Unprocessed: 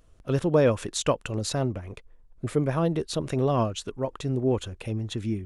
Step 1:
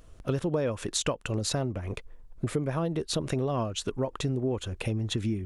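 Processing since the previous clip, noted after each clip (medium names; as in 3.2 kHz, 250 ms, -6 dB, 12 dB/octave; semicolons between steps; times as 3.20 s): compression 6:1, threshold -32 dBFS, peak gain reduction 15 dB; trim +6 dB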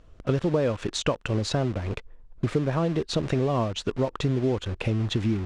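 in parallel at -3.5 dB: word length cut 6-bit, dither none; on the sum: distance through air 110 m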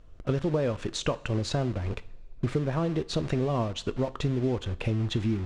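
bass shelf 76 Hz +6 dB; two-slope reverb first 0.41 s, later 2 s, from -18 dB, DRR 13 dB; trim -3.5 dB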